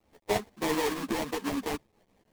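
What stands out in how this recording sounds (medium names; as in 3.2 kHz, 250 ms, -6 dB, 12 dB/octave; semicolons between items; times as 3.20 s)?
aliases and images of a low sample rate 1.4 kHz, jitter 20%; tremolo saw up 5.4 Hz, depth 55%; a quantiser's noise floor 12-bit, dither none; a shimmering, thickened sound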